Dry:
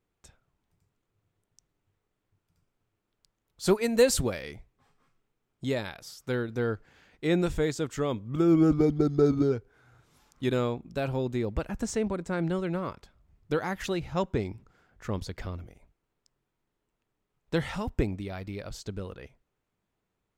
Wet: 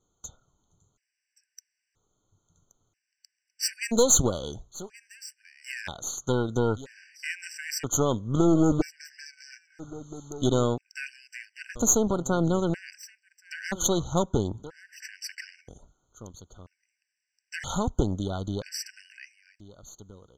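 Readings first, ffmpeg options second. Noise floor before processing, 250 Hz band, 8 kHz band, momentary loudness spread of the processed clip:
-82 dBFS, 0.0 dB, +13.0 dB, 22 LU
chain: -af "acompressor=threshold=0.0398:ratio=2,lowpass=f=6600:t=q:w=7.8,aeval=exprs='0.251*(cos(1*acos(clip(val(0)/0.251,-1,1)))-cos(1*PI/2))+0.0178*(cos(8*acos(clip(val(0)/0.251,-1,1)))-cos(8*PI/2))':c=same,aecho=1:1:1124:0.126,afftfilt=real='re*gt(sin(2*PI*0.51*pts/sr)*(1-2*mod(floor(b*sr/1024/1500),2)),0)':imag='im*gt(sin(2*PI*0.51*pts/sr)*(1-2*mod(floor(b*sr/1024/1500),2)),0)':win_size=1024:overlap=0.75,volume=1.88"

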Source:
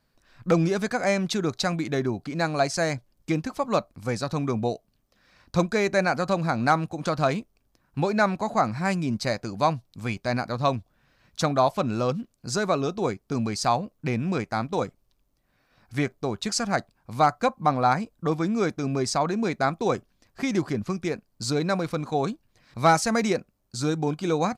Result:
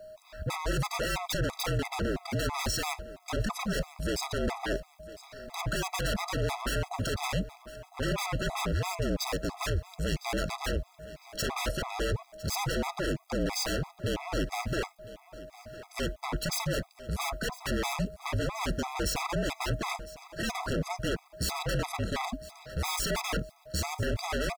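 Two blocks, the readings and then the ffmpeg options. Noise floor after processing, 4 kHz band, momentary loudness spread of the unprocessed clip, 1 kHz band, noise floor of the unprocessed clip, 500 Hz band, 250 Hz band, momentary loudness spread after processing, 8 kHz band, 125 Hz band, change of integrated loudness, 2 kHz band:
-60 dBFS, -0.5 dB, 8 LU, -9.5 dB, -70 dBFS, -8.5 dB, -9.0 dB, 9 LU, -1.0 dB, -4.5 dB, -6.5 dB, -4.5 dB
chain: -af "acrusher=bits=11:mix=0:aa=0.000001,aeval=exprs='0.355*(cos(1*acos(clip(val(0)/0.355,-1,1)))-cos(1*PI/2))+0.0891*(cos(4*acos(clip(val(0)/0.355,-1,1)))-cos(4*PI/2))+0.141*(cos(5*acos(clip(val(0)/0.355,-1,1)))-cos(5*PI/2))':c=same,aeval=exprs='0.106*(abs(mod(val(0)/0.106+3,4)-2)-1)':c=same,aeval=exprs='val(0)+0.00631*sin(2*PI*670*n/s)':c=same,volume=21.1,asoftclip=hard,volume=0.0473,afreqshift=-46,aecho=1:1:1006|2012|3018:0.126|0.0378|0.0113,afftfilt=real='re*gt(sin(2*PI*3*pts/sr)*(1-2*mod(floor(b*sr/1024/660),2)),0)':imag='im*gt(sin(2*PI*3*pts/sr)*(1-2*mod(floor(b*sr/1024/660),2)),0)':win_size=1024:overlap=0.75"

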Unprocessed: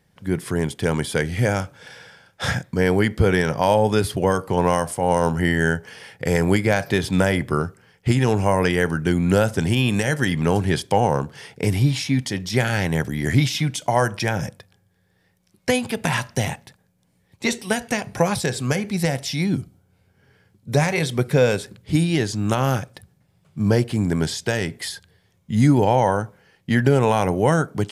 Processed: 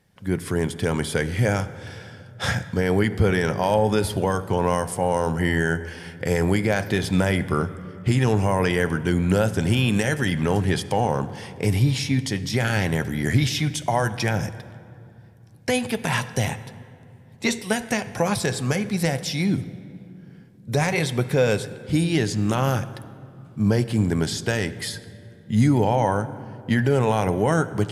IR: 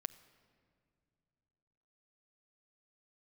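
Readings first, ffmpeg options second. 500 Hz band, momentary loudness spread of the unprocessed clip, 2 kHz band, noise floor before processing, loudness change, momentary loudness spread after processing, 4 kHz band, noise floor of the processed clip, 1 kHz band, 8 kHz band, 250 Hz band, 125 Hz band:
-2.5 dB, 9 LU, -2.0 dB, -64 dBFS, -2.0 dB, 11 LU, -1.0 dB, -47 dBFS, -2.5 dB, -1.0 dB, -1.5 dB, -1.0 dB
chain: -filter_complex "[0:a]alimiter=limit=0.355:level=0:latency=1[s0];[1:a]atrim=start_sample=2205,asetrate=30870,aresample=44100[s1];[s0][s1]afir=irnorm=-1:irlink=0"

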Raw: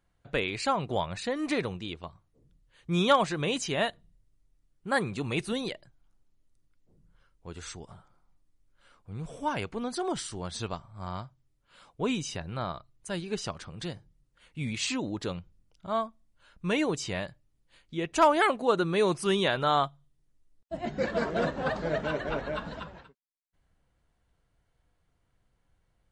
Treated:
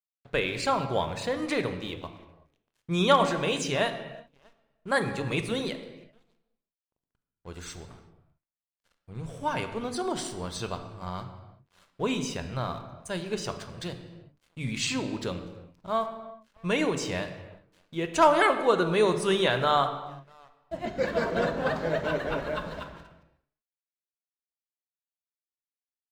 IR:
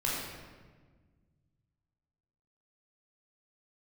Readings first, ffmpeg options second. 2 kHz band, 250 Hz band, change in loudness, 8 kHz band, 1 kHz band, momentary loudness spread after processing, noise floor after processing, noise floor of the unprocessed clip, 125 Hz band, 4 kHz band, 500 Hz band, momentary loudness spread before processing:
+2.0 dB, +0.5 dB, +2.0 dB, +1.0 dB, +2.0 dB, 20 LU, under -85 dBFS, -73 dBFS, +1.5 dB, +1.5 dB, +2.5 dB, 18 LU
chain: -filter_complex "[0:a]bandreject=f=50:t=h:w=6,bandreject=f=100:t=h:w=6,bandreject=f=150:t=h:w=6,bandreject=f=200:t=h:w=6,bandreject=f=250:t=h:w=6,bandreject=f=300:t=h:w=6,asplit=2[s0][s1];[s1]adelay=641.4,volume=0.0501,highshelf=f=4000:g=-14.4[s2];[s0][s2]amix=inputs=2:normalize=0,aeval=exprs='sgn(val(0))*max(abs(val(0))-0.00178,0)':c=same,asplit=2[s3][s4];[1:a]atrim=start_sample=2205,afade=t=out:st=0.44:d=0.01,atrim=end_sample=19845[s5];[s4][s5]afir=irnorm=-1:irlink=0,volume=0.237[s6];[s3][s6]amix=inputs=2:normalize=0"

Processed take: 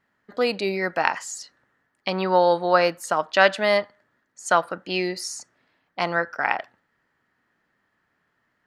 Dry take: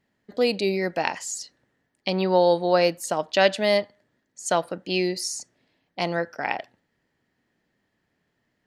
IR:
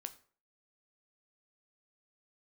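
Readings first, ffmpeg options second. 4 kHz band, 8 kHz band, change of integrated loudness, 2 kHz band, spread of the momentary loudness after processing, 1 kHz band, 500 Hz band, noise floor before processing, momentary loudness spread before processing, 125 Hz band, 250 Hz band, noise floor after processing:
-1.0 dB, -2.5 dB, +1.5 dB, +5.5 dB, 16 LU, +4.5 dB, -0.5 dB, -75 dBFS, 14 LU, -2.5 dB, -2.0 dB, -73 dBFS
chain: -af "equalizer=f=1300:t=o:w=1.2:g=14,volume=0.708"

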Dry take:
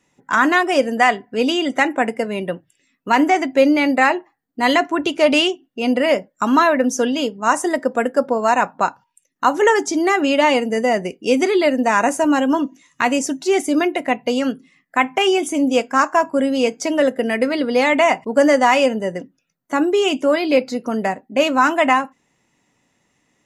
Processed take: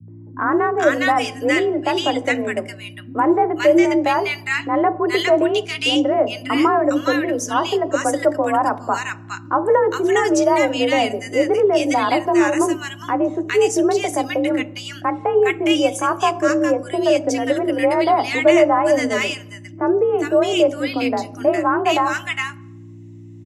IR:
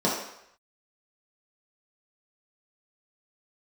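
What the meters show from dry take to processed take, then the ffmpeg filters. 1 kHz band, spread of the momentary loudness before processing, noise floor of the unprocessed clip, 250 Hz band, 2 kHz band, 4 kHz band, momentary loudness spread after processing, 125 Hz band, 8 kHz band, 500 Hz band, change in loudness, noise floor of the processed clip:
-1.5 dB, 7 LU, -69 dBFS, -1.0 dB, -2.5 dB, -0.5 dB, 8 LU, no reading, -0.5 dB, +1.0 dB, -0.5 dB, -39 dBFS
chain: -filter_complex "[0:a]aeval=exprs='val(0)+0.02*(sin(2*PI*60*n/s)+sin(2*PI*2*60*n/s)/2+sin(2*PI*3*60*n/s)/3+sin(2*PI*4*60*n/s)/4+sin(2*PI*5*60*n/s)/5)':c=same,highpass=55,acrossover=split=160|1400[s0][s1][s2];[s1]adelay=80[s3];[s2]adelay=490[s4];[s0][s3][s4]amix=inputs=3:normalize=0,asplit=2[s5][s6];[1:a]atrim=start_sample=2205,lowshelf=f=390:g=9[s7];[s6][s7]afir=irnorm=-1:irlink=0,volume=0.0282[s8];[s5][s8]amix=inputs=2:normalize=0,afreqshift=47,volume=0.891"

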